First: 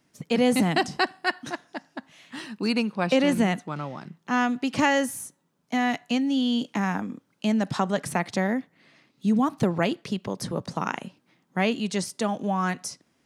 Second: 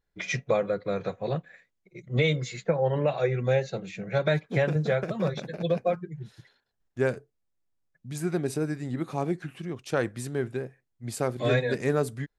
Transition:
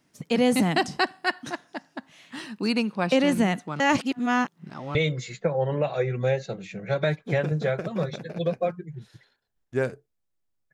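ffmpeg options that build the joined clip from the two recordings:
-filter_complex "[0:a]apad=whole_dur=10.73,atrim=end=10.73,asplit=2[a][b];[a]atrim=end=3.802[c];[b]atrim=start=3.798:end=4.952,asetpts=PTS-STARTPTS,areverse[d];[1:a]atrim=start=2.188:end=7.97[e];[c][d]acrossfade=d=0.004:c1=hsin:c2=hsin[f];[f][e]acrossfade=d=0.004:c1=hsin:c2=hsin"

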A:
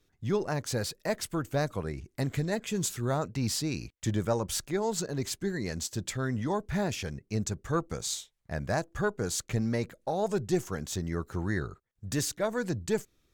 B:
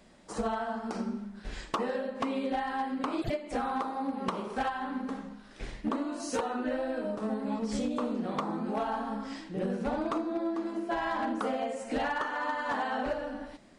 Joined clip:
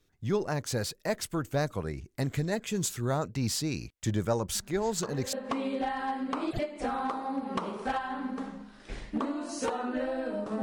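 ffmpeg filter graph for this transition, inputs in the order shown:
-filter_complex "[1:a]asplit=2[a][b];[0:a]apad=whole_dur=10.62,atrim=end=10.62,atrim=end=5.332[c];[b]atrim=start=2.038:end=7.33[d];[a]atrim=start=1.26:end=2.04,asetpts=PTS-STARTPTS,volume=-10.5dB,afade=t=in:d=0.004:c=hsin,afade=t=out:st=0.776:d=0.004:c=hsin,adelay=4550[e];[c][d]acrossfade=d=0.004:c1=hsin:c2=hsin[f];[f][e]amix=inputs=2:normalize=0"

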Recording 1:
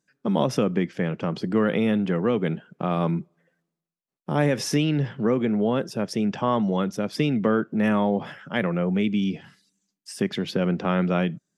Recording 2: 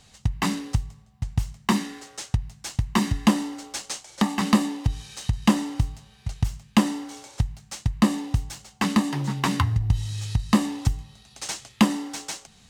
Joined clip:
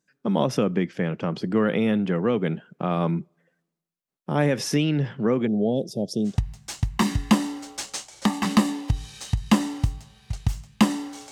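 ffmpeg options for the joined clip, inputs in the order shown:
-filter_complex "[0:a]asplit=3[a][b][c];[a]afade=t=out:st=5.46:d=0.02[d];[b]asuperstop=centerf=1600:order=12:qfactor=0.62,afade=t=in:st=5.46:d=0.02,afade=t=out:st=6.38:d=0.02[e];[c]afade=t=in:st=6.38:d=0.02[f];[d][e][f]amix=inputs=3:normalize=0,apad=whole_dur=11.31,atrim=end=11.31,atrim=end=6.38,asetpts=PTS-STARTPTS[g];[1:a]atrim=start=2.2:end=7.27,asetpts=PTS-STARTPTS[h];[g][h]acrossfade=d=0.14:c1=tri:c2=tri"

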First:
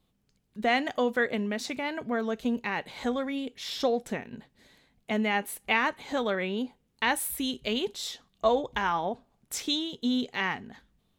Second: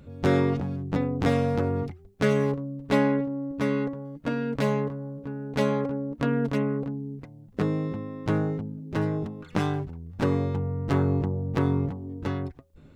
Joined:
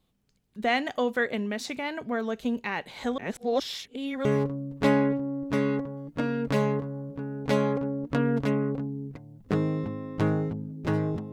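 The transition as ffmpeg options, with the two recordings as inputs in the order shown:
-filter_complex "[0:a]apad=whole_dur=11.32,atrim=end=11.32,asplit=2[a][b];[a]atrim=end=3.182[c];[b]atrim=start=3.178:end=4.252,asetpts=PTS-STARTPTS,areverse[d];[1:a]atrim=start=2.328:end=9.4[e];[c][d]acrossfade=d=0.004:c1=hsin:c2=hsin[f];[f][e]acrossfade=d=0.004:c1=hsin:c2=hsin"

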